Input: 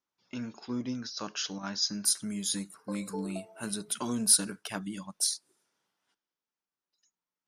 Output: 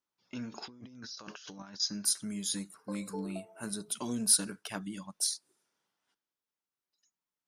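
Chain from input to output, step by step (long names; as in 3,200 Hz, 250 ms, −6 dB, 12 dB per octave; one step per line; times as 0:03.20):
0:00.52–0:01.80: compressor whose output falls as the input rises −46 dBFS, ratio −1
0:03.19–0:04.20: parametric band 9,000 Hz → 980 Hz −11.5 dB 0.52 octaves
level −2.5 dB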